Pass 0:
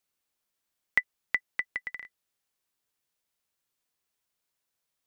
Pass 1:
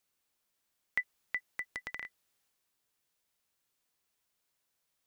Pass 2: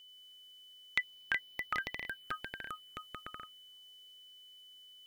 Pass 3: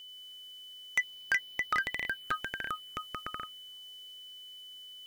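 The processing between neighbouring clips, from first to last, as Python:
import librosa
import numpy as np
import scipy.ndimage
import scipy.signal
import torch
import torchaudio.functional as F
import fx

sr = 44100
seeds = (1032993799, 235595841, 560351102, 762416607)

y1 = fx.transient(x, sr, attack_db=-11, sustain_db=3)
y1 = y1 * librosa.db_to_amplitude(2.0)
y2 = fx.env_phaser(y1, sr, low_hz=180.0, high_hz=1500.0, full_db=-46.0)
y2 = fx.echo_pitch(y2, sr, ms=89, semitones=-4, count=2, db_per_echo=-3.0)
y2 = y2 + 10.0 ** (-61.0 / 20.0) * np.sin(2.0 * np.pi * 3000.0 * np.arange(len(y2)) / sr)
y2 = y2 * librosa.db_to_amplitude(7.0)
y3 = 10.0 ** (-28.5 / 20.0) * np.tanh(y2 / 10.0 ** (-28.5 / 20.0))
y3 = y3 * librosa.db_to_amplitude(8.0)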